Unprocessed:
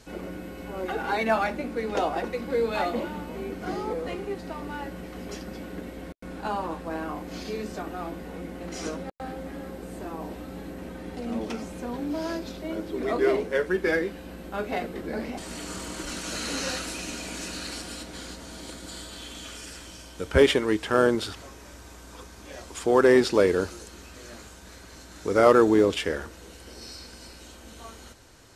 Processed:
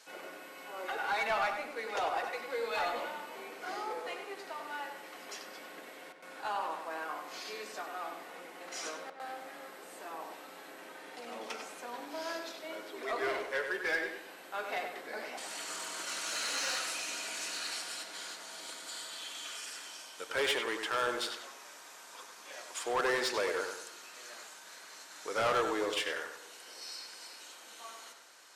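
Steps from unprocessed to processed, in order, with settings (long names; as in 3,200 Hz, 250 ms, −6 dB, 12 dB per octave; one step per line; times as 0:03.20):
high-pass filter 790 Hz 12 dB per octave
soft clipping −24.5 dBFS, distortion −10 dB
on a send: feedback echo with a low-pass in the loop 96 ms, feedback 39%, low-pass 3,400 Hz, level −6 dB
on the sum: level −1.5 dB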